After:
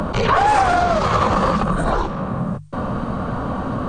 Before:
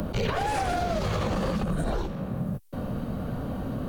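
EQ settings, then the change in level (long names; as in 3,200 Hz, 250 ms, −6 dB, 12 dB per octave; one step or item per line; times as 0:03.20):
linear-phase brick-wall low-pass 9,400 Hz
parametric band 1,100 Hz +12 dB 0.96 octaves
mains-hum notches 50/100/150 Hz
+7.0 dB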